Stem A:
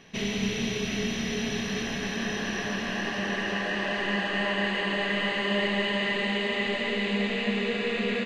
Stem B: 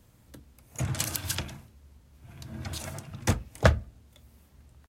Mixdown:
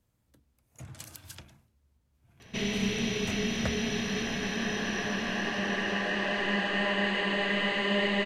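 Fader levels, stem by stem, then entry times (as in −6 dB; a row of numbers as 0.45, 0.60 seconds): −1.0, −15.0 decibels; 2.40, 0.00 seconds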